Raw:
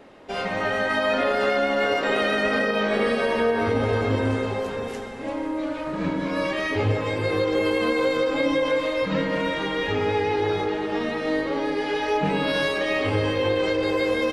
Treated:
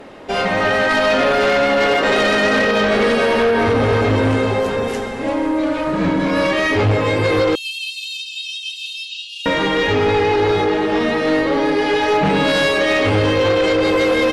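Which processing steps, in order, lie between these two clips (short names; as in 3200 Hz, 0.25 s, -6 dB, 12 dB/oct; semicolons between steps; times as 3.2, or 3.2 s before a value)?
7.55–9.46 Chebyshev high-pass 2600 Hz, order 10; in parallel at -3 dB: sine folder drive 9 dB, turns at -10 dBFS; on the sum: gain -2 dB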